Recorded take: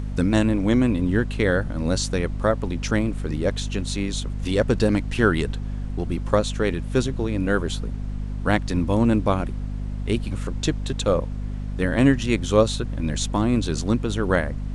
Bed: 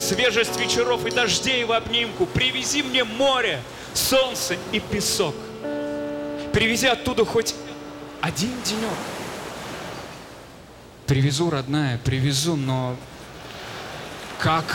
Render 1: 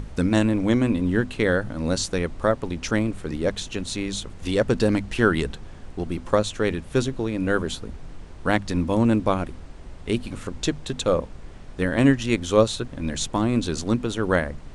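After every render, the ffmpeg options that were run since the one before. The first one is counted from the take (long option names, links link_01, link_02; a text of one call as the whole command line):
ffmpeg -i in.wav -af "bandreject=frequency=50:width_type=h:width=6,bandreject=frequency=100:width_type=h:width=6,bandreject=frequency=150:width_type=h:width=6,bandreject=frequency=200:width_type=h:width=6,bandreject=frequency=250:width_type=h:width=6" out.wav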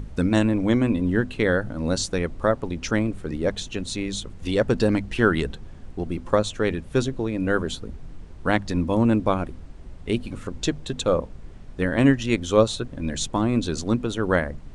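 ffmpeg -i in.wav -af "afftdn=noise_reduction=6:noise_floor=-41" out.wav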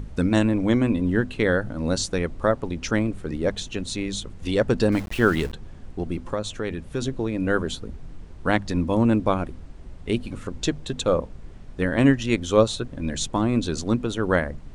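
ffmpeg -i in.wav -filter_complex "[0:a]asettb=1/sr,asplit=3[link_01][link_02][link_03];[link_01]atrim=end=4.924[link_04];[link_02]atrim=start=4.92:end=5.53,asetpts=PTS-STARTPTS,afade=type=in:duration=0.004:curve=qsin,afade=type=out:start_time=0.606:duration=0.004:curve=qsin,aeval=exprs='val(0)*gte(abs(val(0)),0.02)':channel_layout=same[link_05];[link_03]atrim=start=5.526[link_06];[link_04][link_05]acrossfade=duration=0.004:curve1=hsin:curve2=qsin[link_07];[link_07][link_06]acrossfade=duration=0.004:curve1=qsin:curve2=hsin,asplit=3[link_08][link_09][link_10];[link_08]afade=type=out:start_time=6.22:duration=0.02[link_11];[link_09]acompressor=threshold=-27dB:ratio=2:attack=3.2:release=140:knee=1:detection=peak,afade=type=in:start_time=6.22:duration=0.02,afade=type=out:start_time=7.01:duration=0.02[link_12];[link_10]afade=type=in:start_time=7.01:duration=0.02[link_13];[link_11][link_12][link_13]amix=inputs=3:normalize=0" out.wav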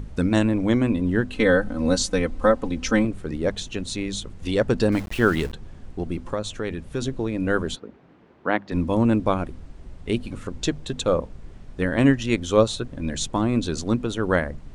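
ffmpeg -i in.wav -filter_complex "[0:a]asettb=1/sr,asplit=3[link_01][link_02][link_03];[link_01]atrim=end=1.324[link_04];[link_02]atrim=start=1.32:end=3.05,asetpts=PTS-STARTPTS,afade=type=in:duration=0.004:curve=qsin,afade=type=out:start_time=1.726:duration=0.004:curve=qsin,aecho=1:1:3.9:0.88,atrim=end_sample=76293[link_05];[link_03]atrim=start=3.046[link_06];[link_04][link_05]acrossfade=duration=0.004:curve1=hsin:curve2=qsin[link_07];[link_07][link_06]acrossfade=duration=0.004:curve1=qsin:curve2=hsin,asplit=3[link_08][link_09][link_10];[link_08]afade=type=out:start_time=7.75:duration=0.02[link_11];[link_09]highpass=260,lowpass=2500,afade=type=in:start_time=7.75:duration=0.02,afade=type=out:start_time=8.71:duration=0.02[link_12];[link_10]afade=type=in:start_time=8.71:duration=0.02[link_13];[link_11][link_12][link_13]amix=inputs=3:normalize=0" out.wav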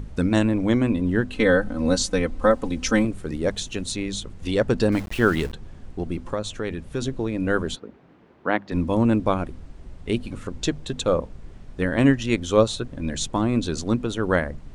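ffmpeg -i in.wav -filter_complex "[0:a]asettb=1/sr,asplit=3[link_01][link_02][link_03];[link_01]atrim=end=2.504[link_04];[link_02]atrim=start=2.5:end=3.92,asetpts=PTS-STARTPTS,afade=type=in:duration=0.004:curve=qsin,afade=type=out:start_time=1.416:duration=0.004:curve=qsin,highshelf=frequency=7500:gain=9[link_05];[link_03]atrim=start=3.916[link_06];[link_04][link_05]acrossfade=duration=0.004:curve1=hsin:curve2=qsin[link_07];[link_07][link_06]acrossfade=duration=0.004:curve1=qsin:curve2=hsin" out.wav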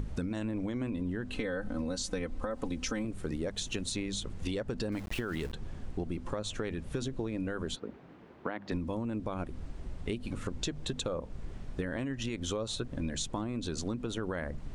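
ffmpeg -i in.wav -af "alimiter=limit=-16dB:level=0:latency=1:release=75,acompressor=threshold=-31dB:ratio=10" out.wav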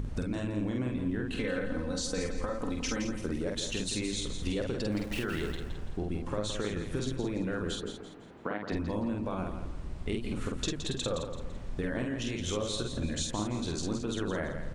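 ffmpeg -i in.wav -filter_complex "[0:a]asplit=2[link_01][link_02];[link_02]adelay=48,volume=-3dB[link_03];[link_01][link_03]amix=inputs=2:normalize=0,asplit=2[link_04][link_05];[link_05]aecho=0:1:168|336|504|672:0.376|0.132|0.046|0.0161[link_06];[link_04][link_06]amix=inputs=2:normalize=0" out.wav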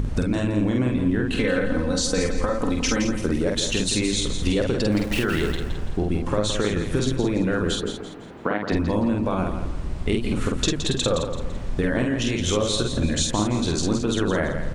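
ffmpeg -i in.wav -af "volume=10.5dB" out.wav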